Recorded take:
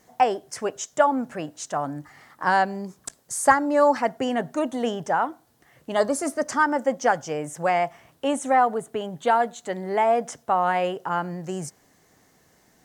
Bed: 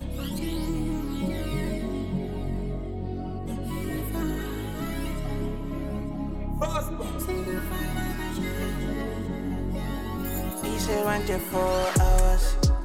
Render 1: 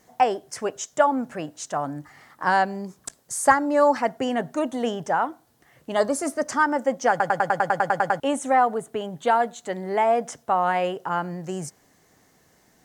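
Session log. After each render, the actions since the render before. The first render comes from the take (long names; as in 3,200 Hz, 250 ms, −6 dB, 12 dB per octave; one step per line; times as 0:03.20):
0:07.10: stutter in place 0.10 s, 11 plays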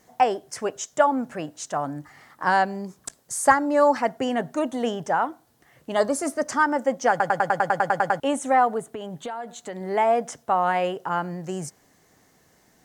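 0:08.92–0:09.81: downward compressor 8 to 1, threshold −29 dBFS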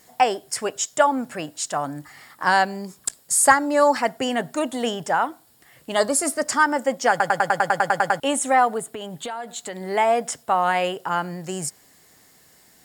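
high-shelf EQ 2,300 Hz +11.5 dB
notch filter 6,100 Hz, Q 5.8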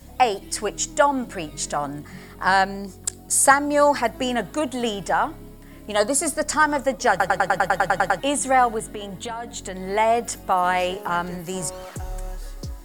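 mix in bed −12 dB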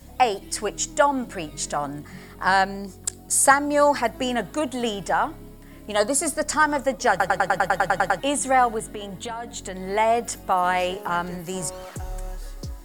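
level −1 dB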